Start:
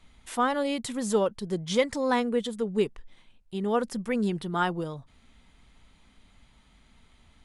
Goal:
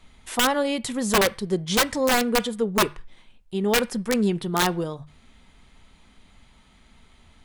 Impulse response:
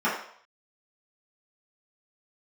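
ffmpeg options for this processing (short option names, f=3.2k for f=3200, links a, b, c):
-filter_complex "[0:a]aeval=exprs='(mod(7.94*val(0)+1,2)-1)/7.94':c=same,bandreject=f=50:t=h:w=6,bandreject=f=100:t=h:w=6,bandreject=f=150:t=h:w=6,asplit=2[a][b];[1:a]atrim=start_sample=2205,asetrate=70560,aresample=44100[c];[b][c]afir=irnorm=-1:irlink=0,volume=-26.5dB[d];[a][d]amix=inputs=2:normalize=0,volume=5dB"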